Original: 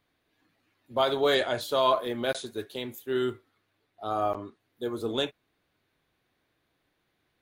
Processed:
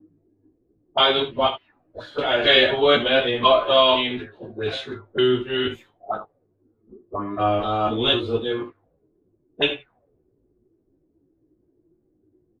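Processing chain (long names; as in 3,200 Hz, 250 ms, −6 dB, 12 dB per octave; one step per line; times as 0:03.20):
slices reordered back to front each 145 ms, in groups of 4
low-shelf EQ 91 Hz +8 dB
on a send: ambience of single reflections 19 ms −11 dB, 39 ms −11.5 dB
on the sum: time stretch by phase vocoder 1.7×
envelope-controlled low-pass 340–2,900 Hz up, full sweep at −33.5 dBFS
level +8.5 dB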